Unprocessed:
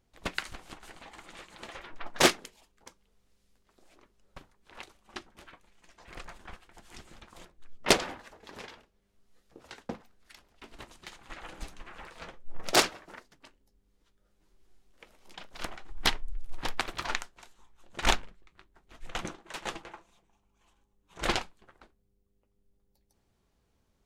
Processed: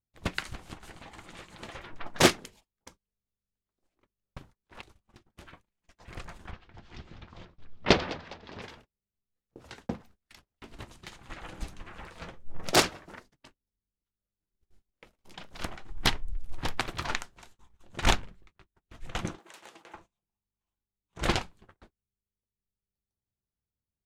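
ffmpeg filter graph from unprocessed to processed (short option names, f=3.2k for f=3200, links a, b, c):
-filter_complex "[0:a]asettb=1/sr,asplit=3[a][b][c];[a]atrim=end=4.814[d];[b]atrim=start=4.81:end=5.3,asetpts=PTS-STARTPTS,afade=t=in:d=0.004:c=qsin,afade=t=out:st=0.486:d=0.004:c=qsin,lowshelf=f=130:g=6.5,aeval=exprs='clip(val(0),-1,0.00668)':c=same,acompressor=threshold=-54dB:ratio=5:attack=3.2:release=140:knee=1:detection=peak[e];[c]atrim=start=5.296[f];[d][e]acrossfade=d=0.004:c1=hsin:c2=qsin[g];[g][f]acrossfade=d=0.004:c1=qsin:c2=hsin,asettb=1/sr,asplit=3[h][i][j];[h]atrim=end=6.514[k];[i]atrim=start=6.51:end=8.62,asetpts=PTS-STARTPTS,afade=t=in:d=0.004:c=qsin,afade=t=out:st=2.106:d=0.004:c=qsin,lowpass=f=4.9k:w=0.5412,lowpass=f=4.9k:w=1.3066,asplit=5[l][m][n][o][p];[m]adelay=204,afreqshift=79,volume=-17.5dB[q];[n]adelay=408,afreqshift=158,volume=-24.6dB[r];[o]adelay=612,afreqshift=237,volume=-31.8dB[s];[p]adelay=816,afreqshift=316,volume=-38.9dB[t];[l][q][r][s][t]amix=inputs=5:normalize=0,atrim=end_sample=93051[u];[j]atrim=start=8.616[v];[k][u]acrossfade=d=0.004:c1=hsin:c2=qsin[w];[w][v]acrossfade=d=0.004:c1=qsin:c2=hsin,asettb=1/sr,asplit=3[x][y][z];[x]atrim=end=19.384[aa];[y]atrim=start=19.38:end=19.94,asetpts=PTS-STARTPTS,afade=t=in:d=0.004:c=qsin,afade=t=out:st=0.556:d=0.004:c=qsin,highpass=330,highshelf=f=7.6k:g=8,acompressor=threshold=-47dB:ratio=8:attack=3.2:release=140:knee=1:detection=peak[ab];[z]atrim=start=19.936[ac];[aa][ab]acrossfade=d=0.004:c1=hsin:c2=qsin[ad];[ad][ac]acrossfade=d=0.004:c1=qsin:c2=hsin,equalizer=f=100:t=o:w=2.2:g=10.5,agate=range=-26dB:threshold=-54dB:ratio=16:detection=peak"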